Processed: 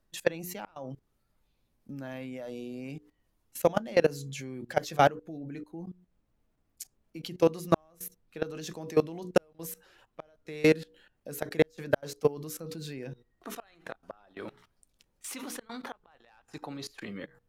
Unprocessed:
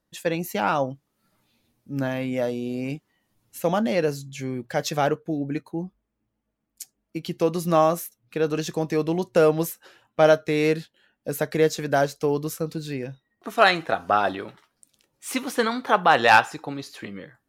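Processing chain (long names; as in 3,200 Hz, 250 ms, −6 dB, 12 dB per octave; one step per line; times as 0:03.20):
mains-hum notches 60/120/180/240/300/360/420/480 Hz
gate with flip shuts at −10 dBFS, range −35 dB
high-pass filter 97 Hz 12 dB per octave
output level in coarse steps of 21 dB
background noise brown −75 dBFS
level +2.5 dB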